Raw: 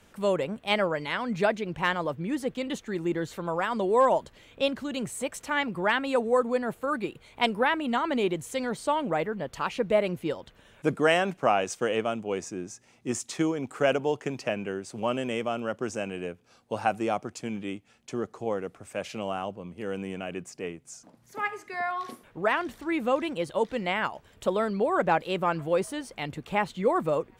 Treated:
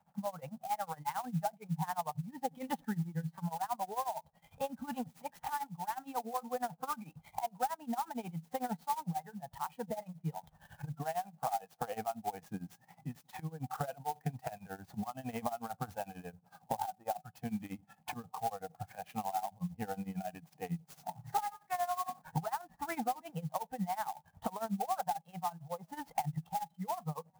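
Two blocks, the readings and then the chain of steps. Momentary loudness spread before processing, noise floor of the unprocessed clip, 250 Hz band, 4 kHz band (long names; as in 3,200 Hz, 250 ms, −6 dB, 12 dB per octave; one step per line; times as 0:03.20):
11 LU, −60 dBFS, −10.5 dB, −16.5 dB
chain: camcorder AGC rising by 16 dB per second
pair of resonant band-passes 360 Hz, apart 2.3 octaves
in parallel at −3 dB: brickwall limiter −29.5 dBFS, peak gain reduction 11.5 dB
on the sum: downward compressor 8 to 1, threshold −42 dBFS, peak gain reduction 20 dB
on a send: delay with a low-pass on its return 91 ms, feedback 59%, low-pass 520 Hz, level −20 dB
on the sum: amplitude tremolo 11 Hz, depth 88%
noise reduction from a noise print of the clip's start 14 dB
converter with an unsteady clock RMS 0.038 ms
level +12.5 dB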